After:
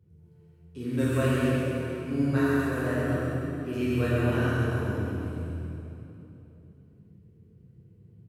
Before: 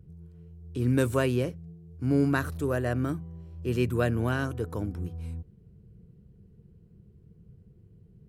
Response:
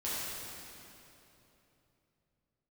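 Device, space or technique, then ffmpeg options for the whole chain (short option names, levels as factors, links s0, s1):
PA in a hall: -filter_complex "[0:a]highpass=100,equalizer=f=2300:t=o:w=0.77:g=4,aecho=1:1:133:0.631[s0];[1:a]atrim=start_sample=2205[s1];[s0][s1]afir=irnorm=-1:irlink=0,volume=0.473"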